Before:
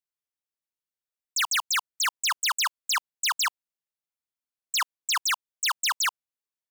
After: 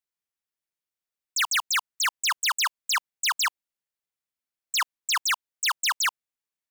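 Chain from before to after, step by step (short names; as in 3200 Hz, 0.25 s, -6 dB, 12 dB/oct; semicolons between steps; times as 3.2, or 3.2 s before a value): bell 2000 Hz +2.5 dB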